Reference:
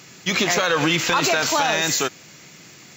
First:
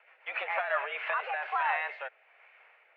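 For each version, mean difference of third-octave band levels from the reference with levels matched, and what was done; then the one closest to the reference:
17.0 dB: rotating-speaker cabinet horn 7 Hz, later 1.2 Hz, at 0:00.31
single-sideband voice off tune +130 Hz 520–2,300 Hz
level −6 dB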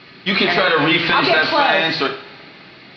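6.5 dB: elliptic low-pass filter 4,400 Hz, stop band 40 dB
coupled-rooms reverb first 0.48 s, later 2.8 s, from −22 dB, DRR 2.5 dB
level +3.5 dB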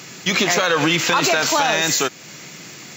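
2.0 dB: high-pass filter 110 Hz
in parallel at +2.5 dB: downward compressor, threshold −31 dBFS, peak gain reduction 15 dB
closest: third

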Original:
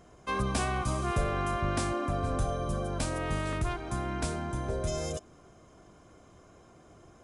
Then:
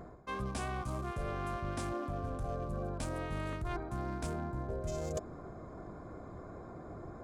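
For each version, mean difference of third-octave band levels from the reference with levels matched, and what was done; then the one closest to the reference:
6.0 dB: adaptive Wiener filter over 15 samples
reversed playback
downward compressor 12 to 1, threshold −44 dBFS, peak gain reduction 20.5 dB
reversed playback
level +9.5 dB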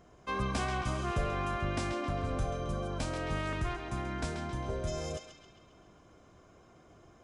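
1.5 dB: parametric band 9,700 Hz −9.5 dB 0.61 octaves
on a send: feedback echo with a band-pass in the loop 134 ms, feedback 63%, band-pass 2,800 Hz, level −5 dB
on the sum: level −3 dB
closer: second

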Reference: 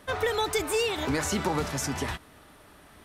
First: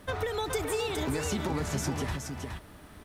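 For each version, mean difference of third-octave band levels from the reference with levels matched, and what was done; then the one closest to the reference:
5.0 dB: low-shelf EQ 300 Hz +8 dB
downward compressor, threshold −27 dBFS, peak gain reduction 8 dB
bit-depth reduction 12 bits, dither triangular
single-tap delay 419 ms −5.5 dB
level −1.5 dB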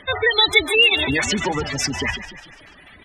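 9.0 dB: gate on every frequency bin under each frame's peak −15 dB strong
reverb reduction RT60 0.99 s
flat-topped bell 3,100 Hz +14 dB
on a send: echo with shifted repeats 147 ms, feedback 55%, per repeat −33 Hz, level −12.5 dB
on the sum: level +6 dB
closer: first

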